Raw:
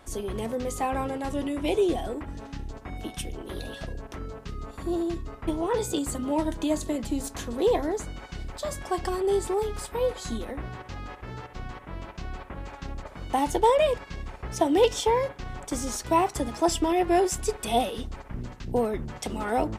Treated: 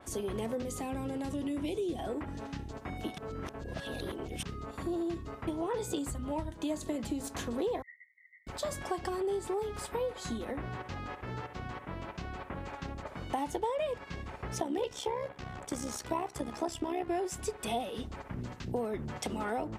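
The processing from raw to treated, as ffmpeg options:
ffmpeg -i in.wav -filter_complex "[0:a]asettb=1/sr,asplit=3[link_01][link_02][link_03];[link_01]atrim=end=0.624[link_04];[link_02]atrim=start=0.62:end=1.99,asetpts=PTS-STARTPTS,afade=type=in:duration=0.004:curve=qsin,afade=type=out:start_time=1.366:duration=0.004:curve=qsin,acrossover=split=380|3000[link_05][link_06][link_07];[link_06]acompressor=threshold=-41dB:ratio=6:attack=3.2:release=140:knee=2.83:detection=peak[link_08];[link_05][link_08][link_07]amix=inputs=3:normalize=0[link_09];[link_03]atrim=start=1.986[link_10];[link_04][link_09]acrossfade=duration=0.004:curve1=hsin:curve2=qsin[link_11];[link_11][link_10]acrossfade=duration=0.004:curve1=qsin:curve2=hsin,asplit=3[link_12][link_13][link_14];[link_12]afade=type=out:start_time=6.09:duration=0.02[link_15];[link_13]asubboost=boost=7:cutoff=110,afade=type=in:start_time=6.09:duration=0.02,afade=type=out:start_time=6.5:duration=0.02[link_16];[link_14]afade=type=in:start_time=6.5:duration=0.02[link_17];[link_15][link_16][link_17]amix=inputs=3:normalize=0,asettb=1/sr,asplit=3[link_18][link_19][link_20];[link_18]atrim=end=7.824[link_21];[link_19]atrim=start=7.82:end=8.47,asetpts=PTS-STARTPTS,afade=type=in:duration=0.004:curve=qsin,afade=type=out:start_time=0.646:duration=0.004:curve=qsin,asuperpass=centerf=2000:order=20:qfactor=6.6[link_22];[link_20]atrim=start=8.466[link_23];[link_21][link_22]acrossfade=duration=0.004:curve1=hsin:curve2=qsin[link_24];[link_24][link_23]acrossfade=duration=0.004:curve1=qsin:curve2=hsin,asettb=1/sr,asplit=3[link_25][link_26][link_27];[link_25]atrim=end=14.604[link_28];[link_26]atrim=start=14.6:end=17.1,asetpts=PTS-STARTPTS,afade=type=in:duration=0.004:curve=qsin,afade=type=out:start_time=2.496:duration=0.004:curve=qsin,tremolo=f=67:d=0.71[link_29];[link_27]atrim=start=17.096[link_30];[link_28][link_29]acrossfade=duration=0.004:curve1=hsin:curve2=qsin[link_31];[link_31][link_30]acrossfade=duration=0.004:curve1=qsin:curve2=hsin,asplit=3[link_32][link_33][link_34];[link_32]atrim=end=3.182[link_35];[link_33]atrim=start=3.178:end=4.432,asetpts=PTS-STARTPTS,areverse[link_36];[link_34]atrim=start=4.428[link_37];[link_35][link_36]acrossfade=duration=0.004:curve1=hsin:curve2=hsin[link_38];[link_38][link_37]acrossfade=duration=0.004:curve1=hsin:curve2=hsin,acompressor=threshold=-31dB:ratio=5,highpass=75,adynamicequalizer=threshold=0.002:dfrequency=3600:dqfactor=0.7:tfrequency=3600:tqfactor=0.7:attack=5:release=100:ratio=0.375:range=2:mode=cutabove:tftype=highshelf" out.wav

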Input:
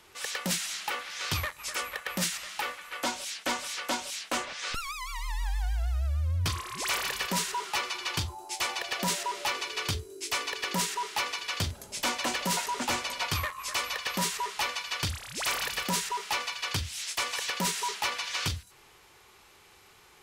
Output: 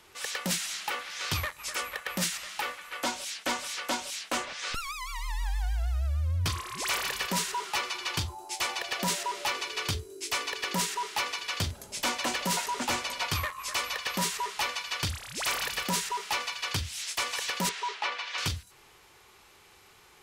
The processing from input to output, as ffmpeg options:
ffmpeg -i in.wav -filter_complex "[0:a]asettb=1/sr,asplit=3[link_01][link_02][link_03];[link_01]atrim=end=17.694[link_04];[link_02]atrim=start=17.69:end=18.38,asetpts=PTS-STARTPTS,afade=type=in:duration=0.004:curve=qsin,afade=type=out:start_time=0.686:duration=0.004:curve=qsin,highpass=370,lowpass=3600[link_05];[link_03]atrim=start=18.376[link_06];[link_04][link_05]acrossfade=duration=0.004:curve1=hsin:curve2=qsin[link_07];[link_07][link_06]acrossfade=duration=0.004:curve1=qsin:curve2=hsin" out.wav

